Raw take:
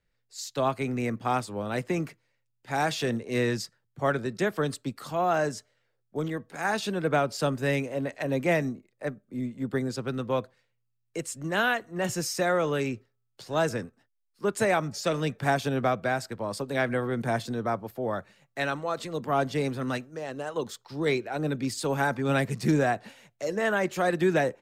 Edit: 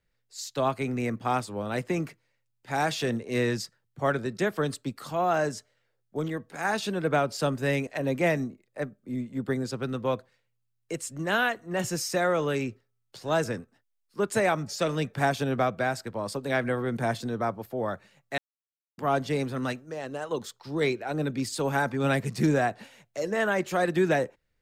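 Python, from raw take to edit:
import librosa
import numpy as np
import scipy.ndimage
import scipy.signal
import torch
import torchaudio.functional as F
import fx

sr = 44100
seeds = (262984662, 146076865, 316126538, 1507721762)

y = fx.edit(x, sr, fx.cut(start_s=7.87, length_s=0.25),
    fx.silence(start_s=18.63, length_s=0.6), tone=tone)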